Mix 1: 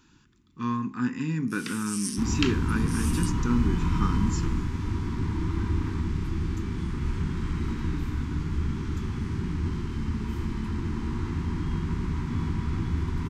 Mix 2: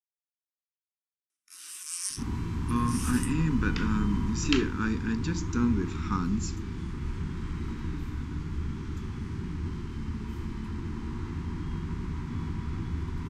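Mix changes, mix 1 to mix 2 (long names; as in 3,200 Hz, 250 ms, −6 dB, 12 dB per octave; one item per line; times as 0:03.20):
speech: entry +2.10 s
second sound −5.0 dB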